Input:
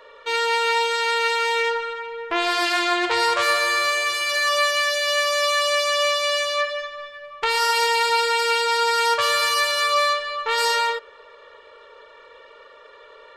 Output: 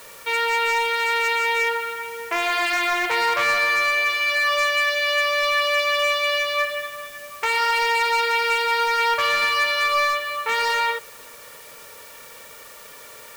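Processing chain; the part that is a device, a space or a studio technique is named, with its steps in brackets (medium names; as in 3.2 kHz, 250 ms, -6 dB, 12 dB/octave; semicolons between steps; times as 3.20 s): drive-through speaker (band-pass 430–3900 Hz; peaking EQ 2.2 kHz +7 dB 0.34 oct; hard clipper -14.5 dBFS, distortion -17 dB; white noise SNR 22 dB)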